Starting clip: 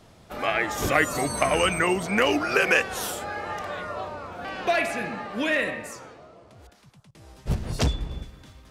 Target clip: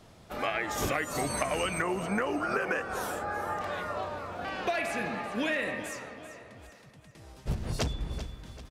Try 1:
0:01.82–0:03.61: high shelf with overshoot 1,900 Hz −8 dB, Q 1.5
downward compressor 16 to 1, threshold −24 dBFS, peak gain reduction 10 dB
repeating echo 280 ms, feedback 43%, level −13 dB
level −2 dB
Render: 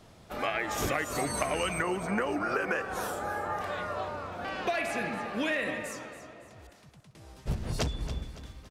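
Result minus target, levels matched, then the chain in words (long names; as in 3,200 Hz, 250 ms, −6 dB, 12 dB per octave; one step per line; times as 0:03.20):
echo 109 ms early
0:01.82–0:03.61: high shelf with overshoot 1,900 Hz −8 dB, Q 1.5
downward compressor 16 to 1, threshold −24 dBFS, peak gain reduction 10 dB
repeating echo 389 ms, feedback 43%, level −13 dB
level −2 dB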